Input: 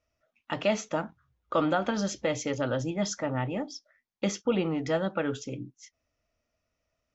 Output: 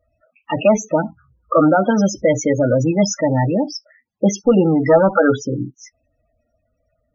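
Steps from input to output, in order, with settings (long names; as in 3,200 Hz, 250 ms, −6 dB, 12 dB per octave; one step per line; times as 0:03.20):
0:04.86–0:05.36: drawn EQ curve 170 Hz 0 dB, 660 Hz +5 dB, 1,000 Hz +12 dB, 2,400 Hz +2 dB
harmonic generator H 2 −13 dB, 4 −15 dB, 5 −12 dB, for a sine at −9 dBFS
spectral peaks only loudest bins 16
level +8 dB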